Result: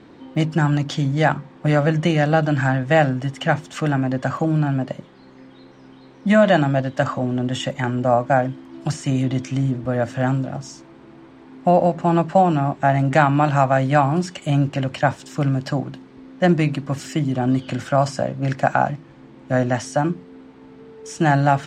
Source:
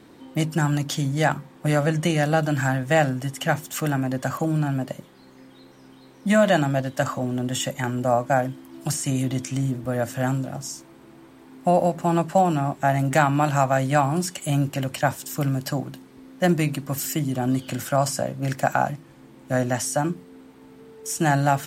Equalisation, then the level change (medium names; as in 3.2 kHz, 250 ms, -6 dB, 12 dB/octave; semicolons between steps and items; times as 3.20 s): distance through air 130 m; +4.0 dB